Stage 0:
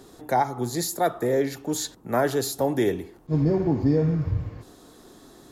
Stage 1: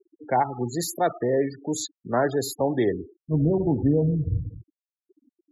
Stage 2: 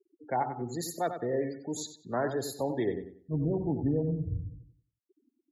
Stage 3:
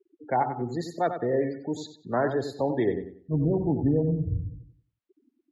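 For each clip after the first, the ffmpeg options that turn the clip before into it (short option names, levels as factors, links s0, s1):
-af "afftfilt=real='re*gte(hypot(re,im),0.0355)':imag='im*gte(hypot(re,im),0.0355)':win_size=1024:overlap=0.75"
-filter_complex "[0:a]asplit=2[s0][s1];[s1]adelay=93,lowpass=f=4600:p=1,volume=0.376,asplit=2[s2][s3];[s3]adelay=93,lowpass=f=4600:p=1,volume=0.3,asplit=2[s4][s5];[s5]adelay=93,lowpass=f=4600:p=1,volume=0.3,asplit=2[s6][s7];[s7]adelay=93,lowpass=f=4600:p=1,volume=0.3[s8];[s0][s2][s4][s6][s8]amix=inputs=5:normalize=0,volume=0.398"
-af "lowpass=3300,volume=1.78"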